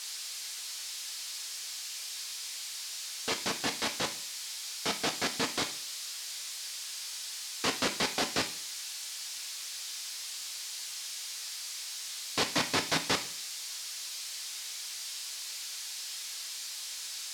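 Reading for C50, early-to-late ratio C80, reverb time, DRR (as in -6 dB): 12.5 dB, 17.0 dB, 0.50 s, 5.0 dB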